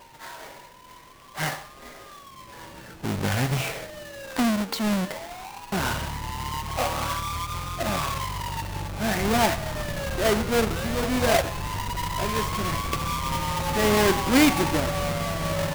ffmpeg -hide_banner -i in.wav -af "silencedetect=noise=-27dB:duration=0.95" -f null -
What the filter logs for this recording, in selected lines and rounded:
silence_start: 0.00
silence_end: 1.40 | silence_duration: 1.40
silence_start: 1.53
silence_end: 3.05 | silence_duration: 1.51